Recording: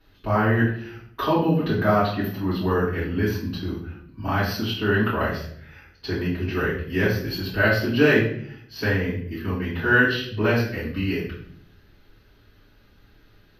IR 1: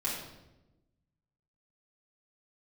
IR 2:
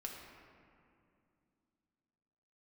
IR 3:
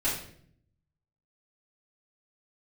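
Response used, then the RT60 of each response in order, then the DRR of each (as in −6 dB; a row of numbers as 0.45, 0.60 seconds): 3; 1.0, 2.5, 0.60 seconds; −8.0, −1.0, −10.5 decibels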